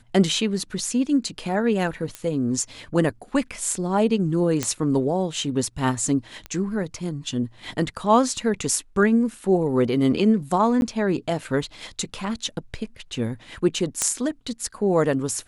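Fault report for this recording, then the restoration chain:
2.15 pop -16 dBFS
4.63 pop -8 dBFS
6.46 pop -19 dBFS
10.81–10.82 gap 11 ms
14.02 pop -6 dBFS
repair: de-click; interpolate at 10.81, 11 ms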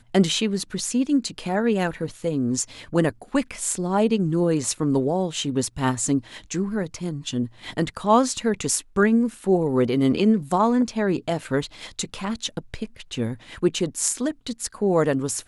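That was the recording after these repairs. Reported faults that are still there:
none

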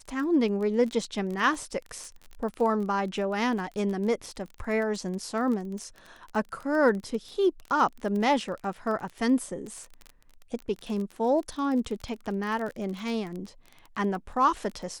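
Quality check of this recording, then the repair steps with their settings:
crackle 23/s -33 dBFS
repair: de-click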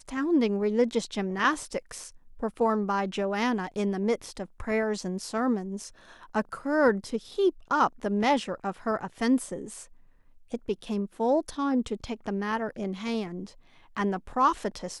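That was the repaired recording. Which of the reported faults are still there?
none

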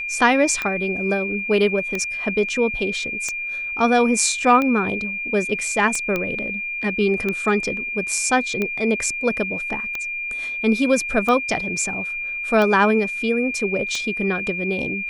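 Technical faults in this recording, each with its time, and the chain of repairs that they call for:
tick 45 rpm -11 dBFS
tone 2400 Hz -25 dBFS
6.16 pop -10 dBFS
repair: de-click; notch 2400 Hz, Q 30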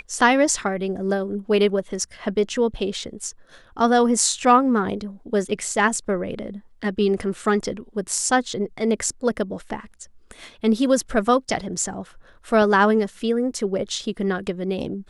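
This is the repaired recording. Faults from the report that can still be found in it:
none

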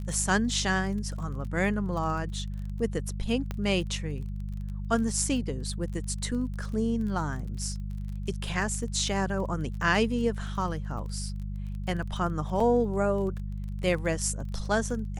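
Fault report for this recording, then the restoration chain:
crackle 27/s -37 dBFS
hum 50 Hz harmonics 4 -34 dBFS
3.51 pop -19 dBFS
12.6 gap 3.7 ms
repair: de-click; de-hum 50 Hz, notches 4; interpolate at 12.6, 3.7 ms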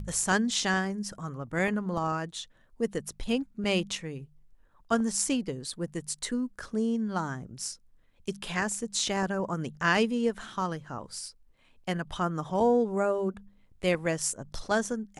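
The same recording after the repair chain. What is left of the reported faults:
none

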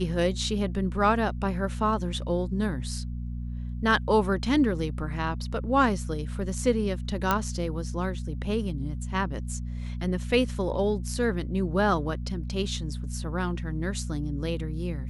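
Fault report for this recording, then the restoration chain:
hum 60 Hz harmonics 4 -33 dBFS
7.31 pop -9 dBFS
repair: de-click; de-hum 60 Hz, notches 4

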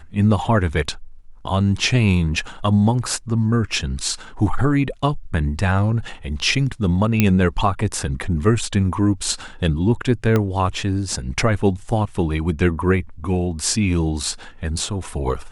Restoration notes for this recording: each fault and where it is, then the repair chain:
7.2 pop -2 dBFS
10.36 pop -7 dBFS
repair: de-click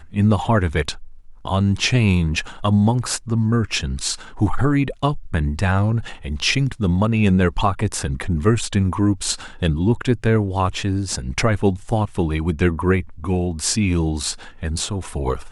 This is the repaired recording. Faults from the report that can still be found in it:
10.36 pop

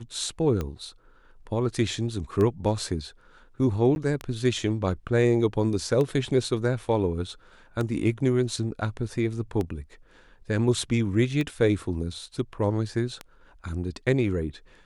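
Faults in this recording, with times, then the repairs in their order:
tick 33 1/3 rpm -17 dBFS
3.95–3.96 gap 11 ms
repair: de-click; interpolate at 3.95, 11 ms

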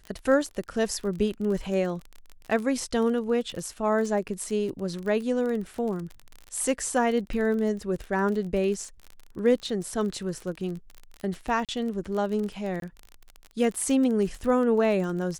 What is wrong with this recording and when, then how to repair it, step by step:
crackle 34/s -32 dBFS
4.28–4.29 gap 7.2 ms
11.65–11.69 gap 37 ms
12.8–12.82 gap 22 ms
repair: de-click; interpolate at 4.28, 7.2 ms; interpolate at 11.65, 37 ms; interpolate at 12.8, 22 ms

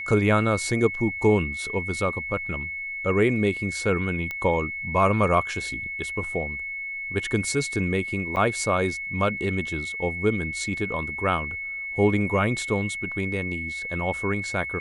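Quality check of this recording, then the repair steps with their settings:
tone 2200 Hz -30 dBFS
4.31 pop -17 dBFS
8.36–8.37 gap 7.9 ms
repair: de-click; notch 2200 Hz, Q 30; interpolate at 8.36, 7.9 ms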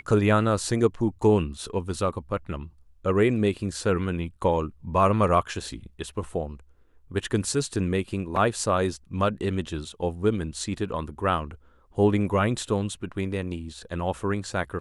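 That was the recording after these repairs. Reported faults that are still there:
none

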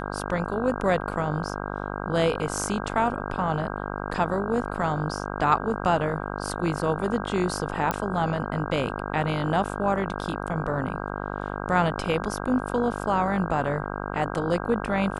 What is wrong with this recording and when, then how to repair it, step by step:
buzz 50 Hz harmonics 32 -32 dBFS
7.91 pop -10 dBFS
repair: de-click; de-hum 50 Hz, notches 32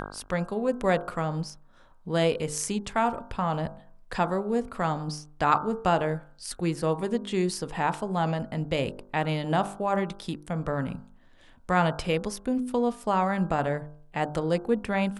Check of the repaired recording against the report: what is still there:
none

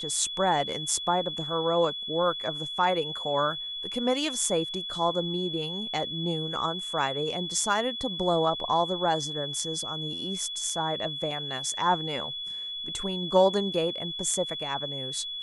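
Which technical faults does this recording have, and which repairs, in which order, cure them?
tone 3400 Hz -33 dBFS
11.31 gap 3.5 ms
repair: notch 3400 Hz, Q 30; interpolate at 11.31, 3.5 ms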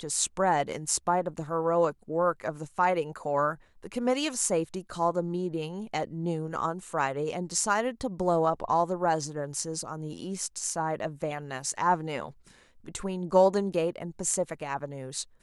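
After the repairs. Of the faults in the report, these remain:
none

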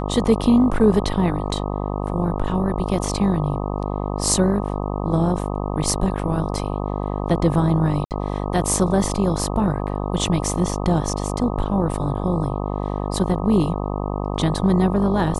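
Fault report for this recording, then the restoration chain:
buzz 50 Hz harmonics 25 -25 dBFS
8.05–8.11 gap 58 ms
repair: de-hum 50 Hz, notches 25; interpolate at 8.05, 58 ms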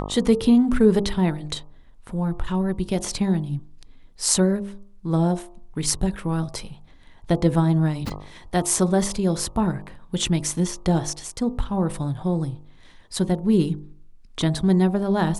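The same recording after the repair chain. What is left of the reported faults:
none

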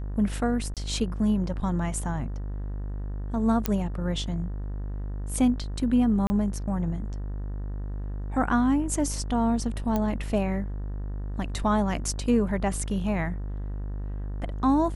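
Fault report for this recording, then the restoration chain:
buzz 50 Hz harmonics 38 -32 dBFS
0.74–0.77 gap 27 ms
3.66 pop -9 dBFS
6.27–6.3 gap 30 ms
9.96 pop -14 dBFS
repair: de-click; de-hum 50 Hz, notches 38; interpolate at 0.74, 27 ms; interpolate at 6.27, 30 ms

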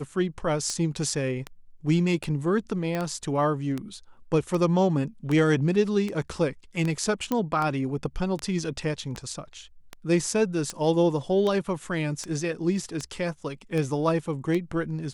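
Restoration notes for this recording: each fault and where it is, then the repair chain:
tick 78 rpm -17 dBFS
2.95 pop -16 dBFS
7.32 pop -13 dBFS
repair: de-click

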